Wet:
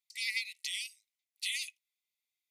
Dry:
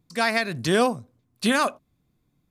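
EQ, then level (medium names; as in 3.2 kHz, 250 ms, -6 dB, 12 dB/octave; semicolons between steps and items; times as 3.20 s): brick-wall FIR high-pass 1.9 kHz; -6.0 dB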